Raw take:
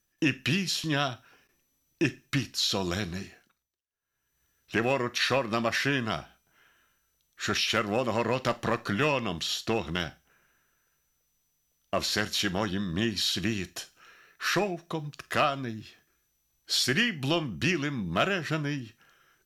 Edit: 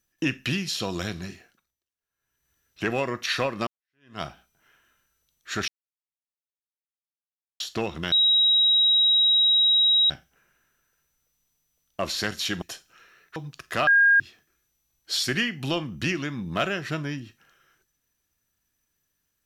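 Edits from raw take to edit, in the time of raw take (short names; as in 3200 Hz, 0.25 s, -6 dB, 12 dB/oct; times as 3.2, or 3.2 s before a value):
0.8–2.72 cut
5.59–6.13 fade in exponential
7.6–9.52 mute
10.04 add tone 3830 Hz -16 dBFS 1.98 s
12.56–13.69 cut
14.43–14.96 cut
15.47–15.8 bleep 1620 Hz -14 dBFS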